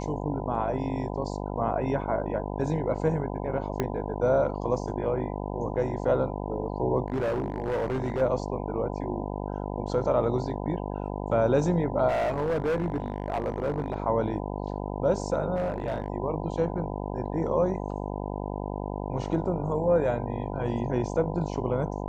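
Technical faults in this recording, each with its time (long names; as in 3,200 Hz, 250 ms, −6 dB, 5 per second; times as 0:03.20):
mains buzz 50 Hz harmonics 20 −33 dBFS
0:03.80: click −13 dBFS
0:07.06–0:08.22: clipping −24 dBFS
0:12.08–0:13.94: clipping −23 dBFS
0:15.55–0:16.08: clipping −23.5 dBFS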